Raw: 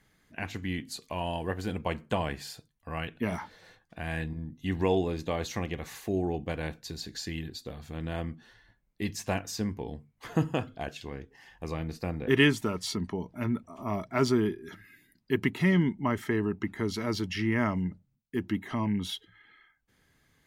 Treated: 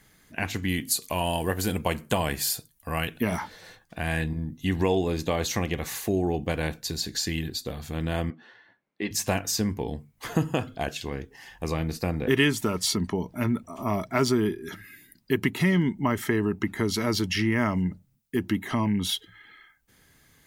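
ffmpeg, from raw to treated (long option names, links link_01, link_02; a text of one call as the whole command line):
ffmpeg -i in.wav -filter_complex "[0:a]asettb=1/sr,asplit=3[link_01][link_02][link_03];[link_01]atrim=end=0.684[link_04];[link_02]atrim=start=0.68:end=3.23,asetpts=PTS-STARTPTS,afade=type=in:duration=0.004:curve=qsin,afade=type=out:start_time=2.546:duration=0.004:curve=qsin,equalizer=frequency=13000:width=0.49:gain=11[link_05];[link_03]atrim=start=3.226[link_06];[link_04][link_05]acrossfade=duration=0.004:curve1=hsin:curve2=qsin[link_07];[link_07][link_06]acrossfade=duration=0.004:curve1=qsin:curve2=hsin,asettb=1/sr,asplit=3[link_08][link_09][link_10];[link_08]atrim=end=8.304[link_11];[link_09]atrim=start=8.3:end=9.11,asetpts=PTS-STARTPTS,afade=type=in:duration=0.004:curve=qsin,afade=type=out:start_time=0.806:duration=0.004:curve=qsin,highpass=290,lowpass=2600[link_12];[link_10]atrim=start=9.106[link_13];[link_11][link_12]acrossfade=duration=0.004:curve1=hsin:curve2=qsin[link_14];[link_14][link_13]acrossfade=duration=0.004:curve1=qsin:curve2=hsin,highshelf=frequency=6500:gain=9.5,acompressor=threshold=-29dB:ratio=2,volume=6.5dB" out.wav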